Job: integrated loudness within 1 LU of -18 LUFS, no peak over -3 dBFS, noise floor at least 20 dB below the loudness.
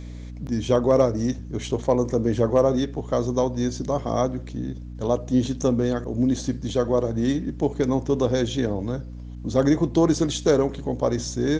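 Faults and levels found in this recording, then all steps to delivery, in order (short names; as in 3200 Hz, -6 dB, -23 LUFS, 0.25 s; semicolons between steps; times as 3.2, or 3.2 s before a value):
hum 60 Hz; harmonics up to 300 Hz; hum level -33 dBFS; loudness -23.5 LUFS; peak -7.0 dBFS; loudness target -18.0 LUFS
-> de-hum 60 Hz, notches 5; gain +5.5 dB; limiter -3 dBFS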